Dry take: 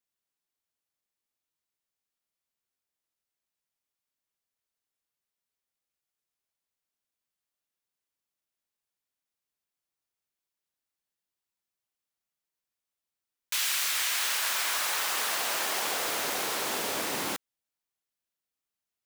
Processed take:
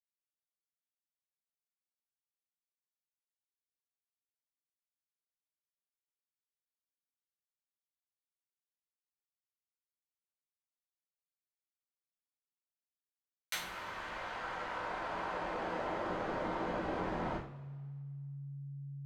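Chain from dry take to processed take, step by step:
hold until the input has moved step −30.5 dBFS
downward compressor 2.5 to 1, threshold −45 dBFS, peak gain reduction 13 dB
treble cut that deepens with the level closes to 1,200 Hz, closed at −39 dBFS
frequency shifter −140 Hz
convolution reverb, pre-delay 3 ms, DRR −8 dB
level +1.5 dB

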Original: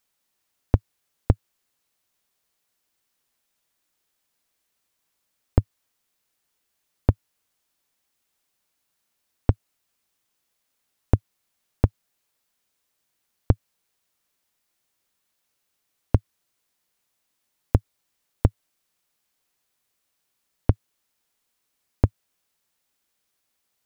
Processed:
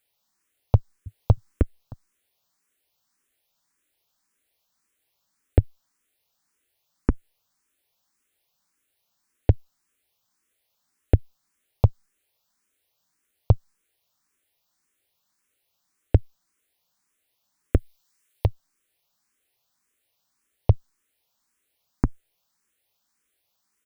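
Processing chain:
0:00.75–0:01.31: delay throw 310 ms, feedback 10%, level −1.5 dB
0:17.75–0:18.47: tilt shelving filter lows −5 dB, about 1,200 Hz
frequency shifter mixed with the dry sound +1.8 Hz
level +3.5 dB

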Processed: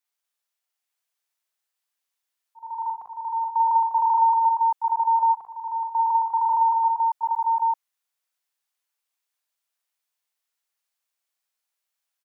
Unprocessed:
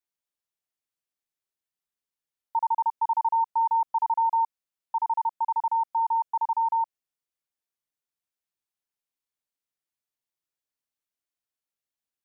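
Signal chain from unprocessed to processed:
high-pass filter 680 Hz 12 dB per octave
volume swells 691 ms
multi-tap delay 42/60/119/149/873/897 ms −4/−10/−12.5/−17.5/−10/−3 dB
level +5 dB

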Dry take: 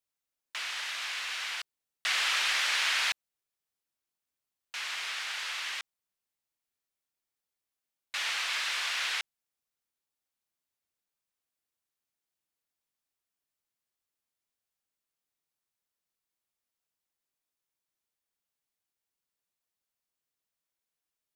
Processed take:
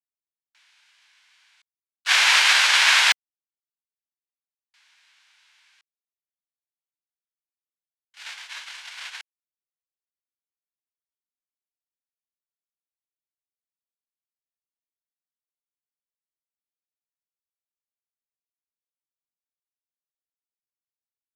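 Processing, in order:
noise gate −28 dBFS, range −47 dB
high-shelf EQ 2,400 Hz +11.5 dB
formants moved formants −4 semitones
one half of a high-frequency compander encoder only
level +7 dB

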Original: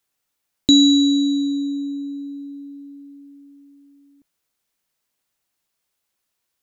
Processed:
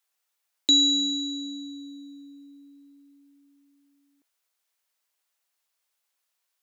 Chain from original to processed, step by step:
high-pass filter 580 Hz 12 dB per octave
level −2 dB

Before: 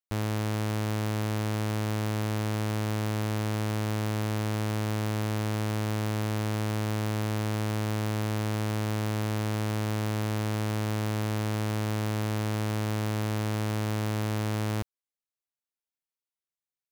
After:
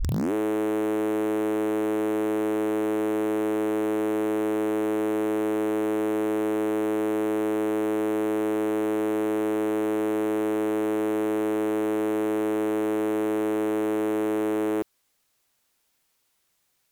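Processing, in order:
turntable start at the beginning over 0.33 s
sine wavefolder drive 19 dB, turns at −22 dBFS

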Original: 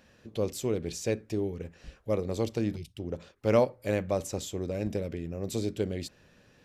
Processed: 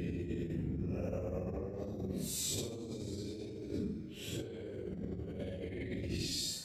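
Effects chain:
extreme stretch with random phases 7.4×, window 0.05 s, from 0:05.19
brickwall limiter −25.5 dBFS, peak gain reduction 9.5 dB
compressor whose output falls as the input rises −37 dBFS, ratio −0.5
level −1.5 dB

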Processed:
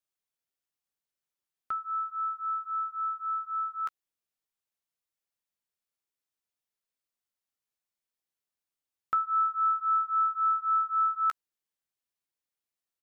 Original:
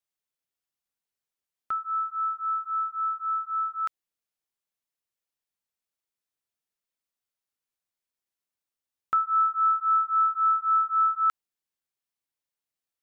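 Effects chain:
double-tracking delay 14 ms −12.5 dB
level −2.5 dB

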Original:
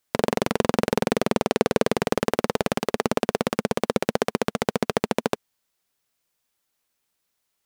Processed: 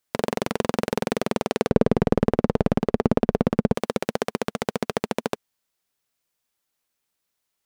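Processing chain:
0:01.69–0:03.75: spectral tilt −4 dB per octave
level −2.5 dB

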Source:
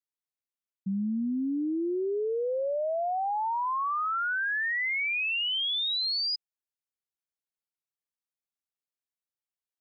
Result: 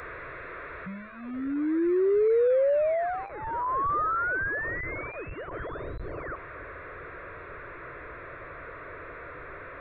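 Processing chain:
linear delta modulator 16 kbit/s, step −36.5 dBFS
high-shelf EQ 2,200 Hz −3.5 dB, from 0:03.28 −10.5 dB
phaser with its sweep stopped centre 820 Hz, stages 6
level +7.5 dB

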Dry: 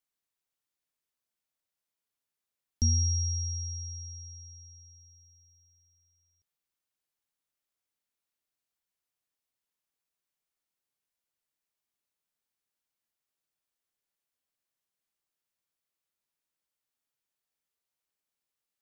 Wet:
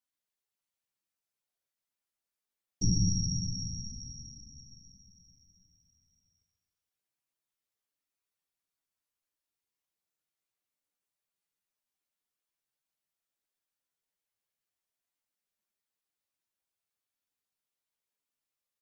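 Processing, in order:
random phases in short frames
multi-voice chorus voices 4, 0.12 Hz, delay 13 ms, depth 4 ms
repeating echo 135 ms, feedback 48%, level −9 dB

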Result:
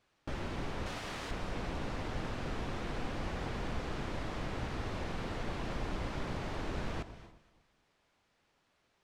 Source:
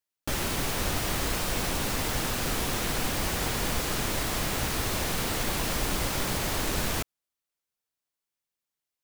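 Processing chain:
0:00.86–0:01.31: spectral tilt +2.5 dB per octave
background noise white −58 dBFS
head-to-tape spacing loss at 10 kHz 26 dB
delay that swaps between a low-pass and a high-pass 117 ms, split 1,100 Hz, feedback 56%, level −12.5 dB
on a send at −15 dB: convolution reverb, pre-delay 3 ms
on the sum: level −6.5 dB

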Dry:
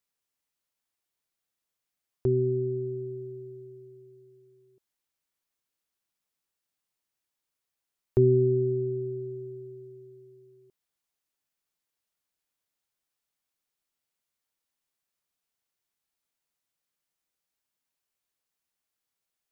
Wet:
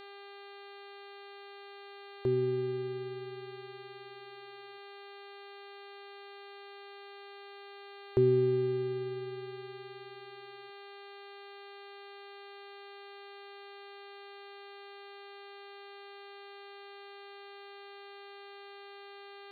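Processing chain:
low-shelf EQ 230 Hz −8 dB
hum with harmonics 400 Hz, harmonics 11, −48 dBFS −4 dB per octave
level −1.5 dB

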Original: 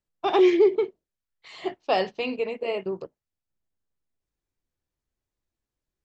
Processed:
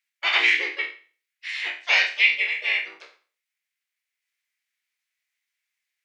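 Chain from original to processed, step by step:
peak hold with a decay on every bin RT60 0.39 s
pitch-shifted copies added −3 semitones −1 dB, +4 semitones −6 dB
high-pass with resonance 2,100 Hz, resonance Q 4.2
level +2.5 dB

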